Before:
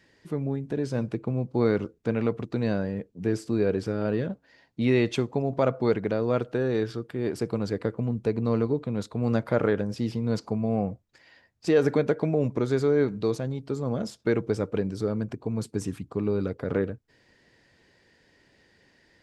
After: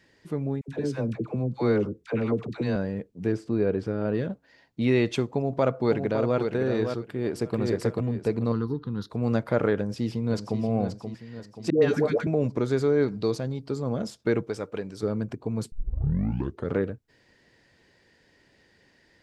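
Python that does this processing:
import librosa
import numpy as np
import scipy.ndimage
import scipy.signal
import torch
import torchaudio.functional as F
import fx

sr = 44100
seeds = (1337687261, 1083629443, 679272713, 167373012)

y = fx.dispersion(x, sr, late='lows', ms=75.0, hz=690.0, at=(0.61, 2.76))
y = fx.lowpass(y, sr, hz=2100.0, slope=6, at=(3.32, 4.15))
y = fx.echo_throw(y, sr, start_s=5.27, length_s=1.11, ms=560, feedback_pct=15, wet_db=-6.0)
y = fx.echo_throw(y, sr, start_s=7.04, length_s=0.52, ms=440, feedback_pct=30, wet_db=-0.5)
y = fx.fixed_phaser(y, sr, hz=2300.0, stages=6, at=(8.52, 9.1))
y = fx.echo_throw(y, sr, start_s=9.76, length_s=0.85, ms=530, feedback_pct=50, wet_db=-8.0)
y = fx.dispersion(y, sr, late='highs', ms=120.0, hz=560.0, at=(11.7, 12.27))
y = fx.peak_eq(y, sr, hz=4700.0, db=7.0, octaves=0.31, at=(13.02, 13.82))
y = fx.low_shelf(y, sr, hz=390.0, db=-10.5, at=(14.43, 15.03))
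y = fx.edit(y, sr, fx.tape_start(start_s=15.72, length_s=1.01), tone=tone)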